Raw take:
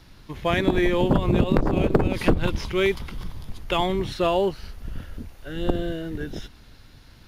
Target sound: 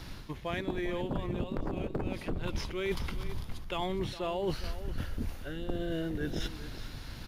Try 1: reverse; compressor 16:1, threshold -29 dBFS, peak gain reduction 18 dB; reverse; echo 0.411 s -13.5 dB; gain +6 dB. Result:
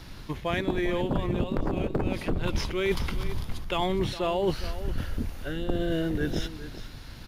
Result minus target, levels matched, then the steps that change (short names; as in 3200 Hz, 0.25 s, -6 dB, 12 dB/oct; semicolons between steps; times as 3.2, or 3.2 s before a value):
compressor: peak gain reduction -6.5 dB
change: compressor 16:1, threshold -36 dBFS, peak gain reduction 24.5 dB